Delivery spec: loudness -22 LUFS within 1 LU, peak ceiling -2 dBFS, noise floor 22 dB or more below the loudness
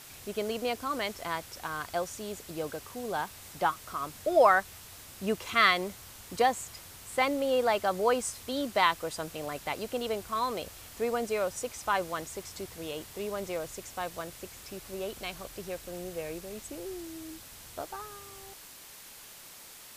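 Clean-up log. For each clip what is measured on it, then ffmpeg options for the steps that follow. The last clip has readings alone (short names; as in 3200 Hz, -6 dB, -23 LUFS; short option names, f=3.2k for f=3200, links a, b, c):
noise floor -50 dBFS; noise floor target -54 dBFS; loudness -31.5 LUFS; peak -8.5 dBFS; loudness target -22.0 LUFS
-> -af "afftdn=nr=6:nf=-50"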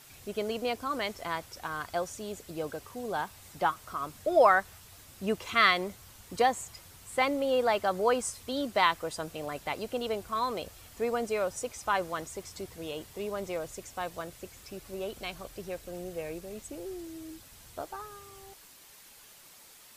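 noise floor -54 dBFS; loudness -31.5 LUFS; peak -8.5 dBFS; loudness target -22.0 LUFS
-> -af "volume=9.5dB,alimiter=limit=-2dB:level=0:latency=1"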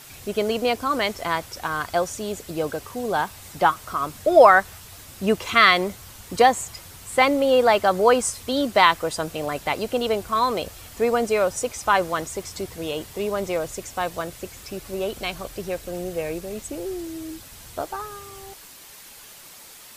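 loudness -22.5 LUFS; peak -2.0 dBFS; noise floor -45 dBFS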